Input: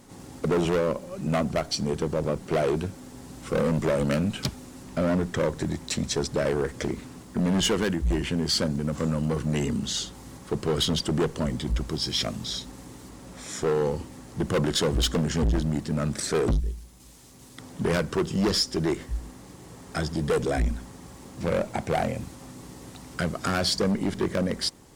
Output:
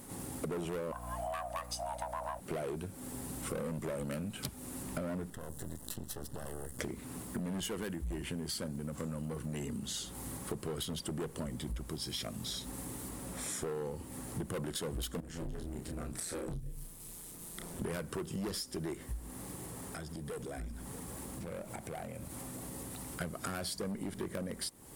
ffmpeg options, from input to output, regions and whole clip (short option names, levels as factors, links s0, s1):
-filter_complex "[0:a]asettb=1/sr,asplit=3[s0][s1][s2];[s0]atrim=end=0.924[s3];[s1]atrim=start=0.92:end=2.4,asetpts=PTS-STARTPTS,afade=t=in:d=0.004:c=qsin,afade=t=out:st=1.476:d=0.004:c=qsin,afreqshift=490,aeval=exprs='val(0)+0.0141*(sin(2*PI*60*n/s)+sin(2*PI*2*60*n/s)/2+sin(2*PI*3*60*n/s)/3+sin(2*PI*4*60*n/s)/4+sin(2*PI*5*60*n/s)/5)':c=same[s4];[s2]atrim=start=2.396[s5];[s3][s4]acrossfade=d=0.004:c1=hsin:c2=qsin[s6];[s6][s5]acrossfade=d=0.004:c1=qsin:c2=hsin,asettb=1/sr,asplit=3[s7][s8][s9];[s7]atrim=end=5.304[s10];[s8]atrim=start=5.3:end=6.79,asetpts=PTS-STARTPTS,afade=t=in:d=0.004:c=qsin,afade=t=out:st=1.486:d=0.004:c=qsin,acrossover=split=170|6300[s11][s12][s13];[s11]acompressor=threshold=0.0112:ratio=4[s14];[s12]acompressor=threshold=0.01:ratio=4[s15];[s13]acompressor=threshold=0.00282:ratio=4[s16];[s14][s15][s16]amix=inputs=3:normalize=0,aeval=exprs='max(val(0),0)':c=same,asuperstop=centerf=2300:order=4:qfactor=3.6[s17];[s9]atrim=start=6.786[s18];[s10][s17]acrossfade=d=0.004:c1=hsin:c2=qsin[s19];[s19][s18]acrossfade=d=0.004:c1=qsin:c2=hsin,asettb=1/sr,asplit=3[s20][s21][s22];[s20]atrim=end=15.204[s23];[s21]atrim=start=15.2:end=17.82,asetpts=PTS-STARTPTS,afade=t=in:d=0.004:c=qsin,afade=t=out:st=2.616:d=0.004:c=qsin,acompressor=threshold=0.0126:ratio=2.5:attack=3.2:release=140:knee=1:detection=peak,aeval=exprs='val(0)*sin(2*PI*86*n/s)':c=same,asplit=2[s24][s25];[s25]adelay=31,volume=0.596[s26];[s24][s26]amix=inputs=2:normalize=0,atrim=end_sample=115542[s27];[s22]atrim=start=17.816[s28];[s23][s27]acrossfade=d=0.004:c1=hsin:c2=qsin[s29];[s29][s28]acrossfade=d=0.004:c1=qsin:c2=hsin,asettb=1/sr,asplit=3[s30][s31][s32];[s30]atrim=end=19.634[s33];[s31]atrim=start=19.63:end=23.21,asetpts=PTS-STARTPTS,afade=t=in:d=0.004:c=qsin,afade=t=out:st=3.576:d=0.004:c=qsin,acompressor=threshold=0.00891:ratio=6:attack=3.2:release=140:knee=1:detection=peak,aecho=1:1:634:0.188,atrim=end_sample=157878[s34];[s32]atrim=start=23.206[s35];[s33][s34]acrossfade=d=0.004:c1=hsin:c2=qsin[s36];[s36][s35]acrossfade=d=0.004:c1=qsin:c2=hsin,highshelf=f=7900:t=q:w=1.5:g=9.5,acompressor=threshold=0.0158:ratio=10"